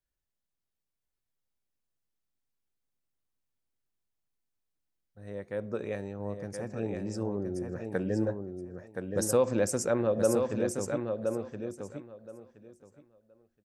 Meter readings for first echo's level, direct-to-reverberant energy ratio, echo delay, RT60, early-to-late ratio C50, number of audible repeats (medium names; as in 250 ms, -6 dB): -5.5 dB, no reverb, 1022 ms, no reverb, no reverb, 2